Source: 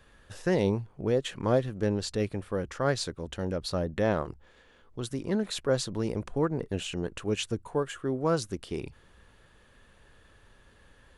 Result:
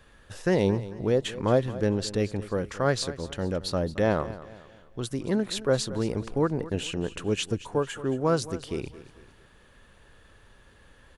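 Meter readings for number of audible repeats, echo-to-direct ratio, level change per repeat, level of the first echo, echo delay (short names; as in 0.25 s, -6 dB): 3, -15.5 dB, -8.0 dB, -16.0 dB, 0.222 s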